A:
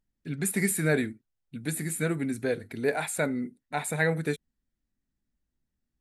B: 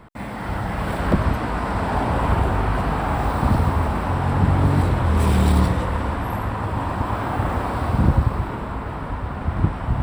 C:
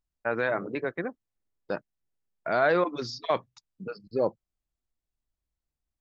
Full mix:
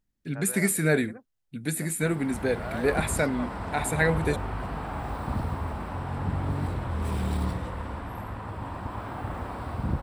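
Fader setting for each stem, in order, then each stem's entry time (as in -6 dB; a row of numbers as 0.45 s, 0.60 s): +2.0 dB, -11.5 dB, -13.5 dB; 0.00 s, 1.85 s, 0.10 s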